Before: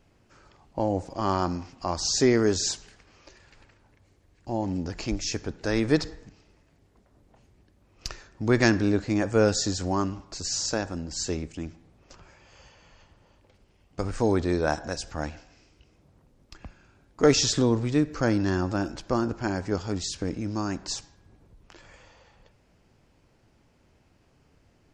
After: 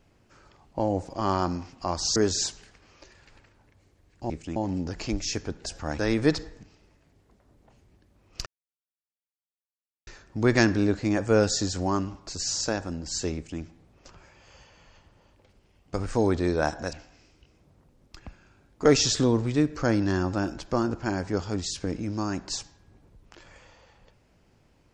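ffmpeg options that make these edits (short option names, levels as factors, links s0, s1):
-filter_complex "[0:a]asplit=8[s0][s1][s2][s3][s4][s5][s6][s7];[s0]atrim=end=2.162[s8];[s1]atrim=start=2.408:end=4.552[s9];[s2]atrim=start=11.398:end=11.662[s10];[s3]atrim=start=4.548:end=5.652[s11];[s4]atrim=start=14.978:end=15.312[s12];[s5]atrim=start=5.648:end=8.12,asetpts=PTS-STARTPTS,afade=t=out:st=2.468:d=0.004:c=hsin,apad=pad_dur=1.61[s13];[s6]atrim=start=8.12:end=14.982,asetpts=PTS-STARTPTS,afade=t=in:d=0.004:c=hsin[s14];[s7]atrim=start=15.308[s15];[s8][s9]acrossfade=d=0.004:c1=hsin:c2=hsin[s16];[s16][s10]acrossfade=d=0.004:c1=hsin:c2=hsin[s17];[s17][s11]acrossfade=d=0.004:c1=hsin:c2=hsin[s18];[s18][s12]acrossfade=d=0.004:c1=hsin:c2=hsin[s19];[s13][s14]concat=n=2:v=0:a=1[s20];[s19][s20]acrossfade=d=0.004:c1=hsin:c2=hsin[s21];[s21][s15]acrossfade=d=0.004:c1=hsin:c2=hsin"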